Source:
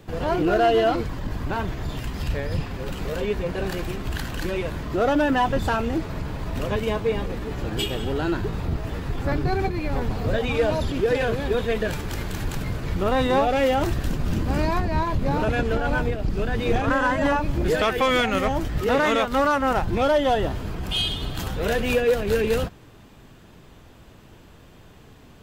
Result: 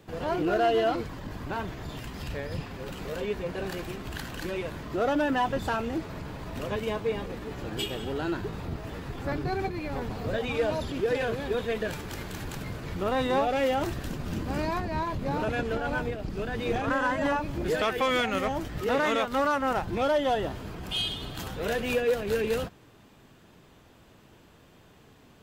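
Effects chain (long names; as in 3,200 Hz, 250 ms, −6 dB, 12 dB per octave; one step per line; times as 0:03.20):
low-shelf EQ 77 Hz −10.5 dB
level −5 dB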